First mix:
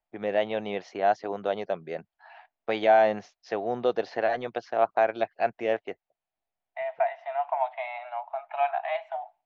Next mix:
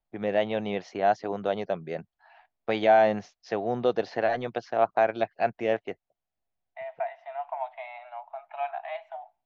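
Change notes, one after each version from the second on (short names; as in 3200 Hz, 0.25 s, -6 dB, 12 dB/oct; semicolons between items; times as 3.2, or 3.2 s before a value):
second voice -6.0 dB; master: add tone controls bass +7 dB, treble +2 dB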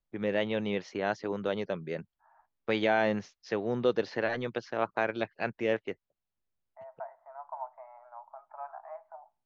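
second voice: add steep low-pass 1300 Hz 36 dB/oct; master: add bell 710 Hz -13 dB 0.41 oct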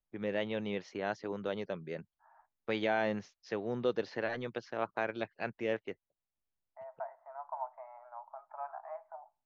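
first voice -5.0 dB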